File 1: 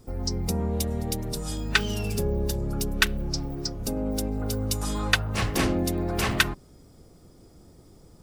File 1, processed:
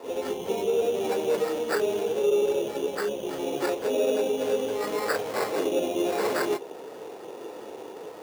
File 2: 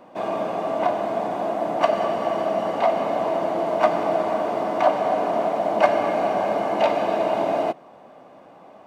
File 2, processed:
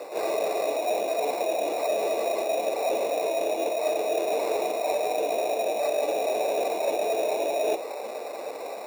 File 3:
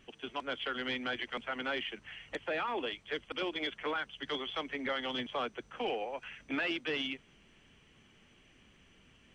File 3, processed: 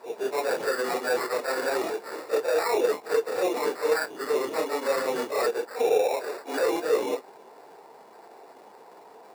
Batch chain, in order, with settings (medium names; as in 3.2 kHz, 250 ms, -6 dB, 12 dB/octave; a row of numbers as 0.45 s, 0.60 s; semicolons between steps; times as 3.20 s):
phase randomisation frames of 100 ms; low-pass that closes with the level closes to 790 Hz, closed at -20 dBFS; reverse; compression 12:1, threshold -34 dBFS; reverse; sample-and-hold 14×; resonant high-pass 450 Hz, resonance Q 3.7; in parallel at -7.5 dB: saturation -32.5 dBFS; on the sum: band noise 640–1000 Hz -59 dBFS; normalise loudness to -27 LUFS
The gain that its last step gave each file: +8.5 dB, +4.0 dB, +6.5 dB